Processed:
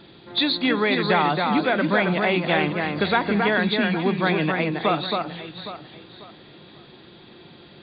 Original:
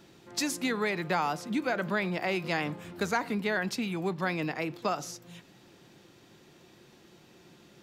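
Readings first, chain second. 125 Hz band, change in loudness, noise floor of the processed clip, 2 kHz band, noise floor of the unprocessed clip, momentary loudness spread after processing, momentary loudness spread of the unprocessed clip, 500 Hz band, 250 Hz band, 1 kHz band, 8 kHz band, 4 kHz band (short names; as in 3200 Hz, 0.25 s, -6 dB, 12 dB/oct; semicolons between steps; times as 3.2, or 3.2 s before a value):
+10.0 dB, +9.5 dB, -48 dBFS, +9.5 dB, -58 dBFS, 9 LU, 6 LU, +10.0 dB, +10.0 dB, +9.5 dB, under -40 dB, +13.0 dB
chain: nonlinear frequency compression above 3200 Hz 4:1; echo with dull and thin repeats by turns 0.271 s, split 2300 Hz, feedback 56%, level -3.5 dB; gain +8 dB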